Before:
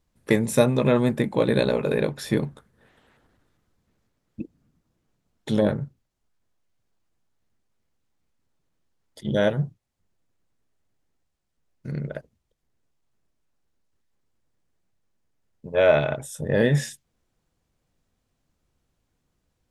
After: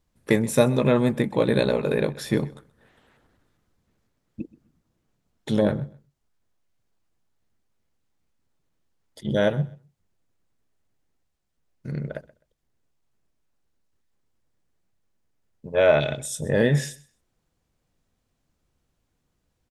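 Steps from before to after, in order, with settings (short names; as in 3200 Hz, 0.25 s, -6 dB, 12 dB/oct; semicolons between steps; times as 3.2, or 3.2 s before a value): 16–16.42 graphic EQ 1000/4000/8000 Hz -10/+9/+6 dB; on a send: feedback echo 0.128 s, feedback 20%, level -21 dB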